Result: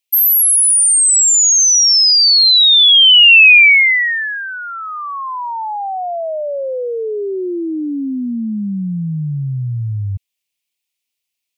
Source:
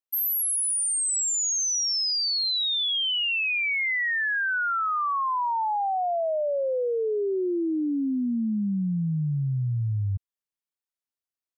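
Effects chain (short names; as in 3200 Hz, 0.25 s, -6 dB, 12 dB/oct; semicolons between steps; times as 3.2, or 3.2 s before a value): resonant high shelf 1900 Hz +8.5 dB, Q 3; gain +6 dB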